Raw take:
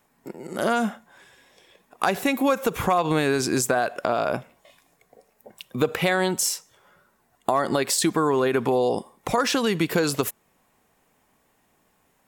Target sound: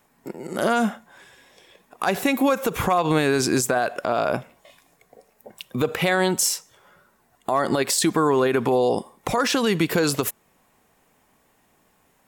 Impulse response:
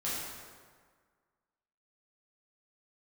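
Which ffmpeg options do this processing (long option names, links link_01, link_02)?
-af "alimiter=limit=-13.5dB:level=0:latency=1:release=58,volume=3dB"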